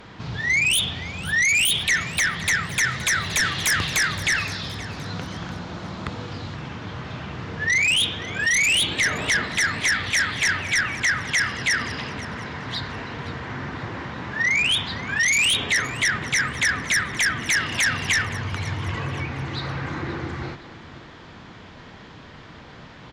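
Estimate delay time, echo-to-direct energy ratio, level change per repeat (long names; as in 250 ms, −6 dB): 520 ms, −16.0 dB, −7.5 dB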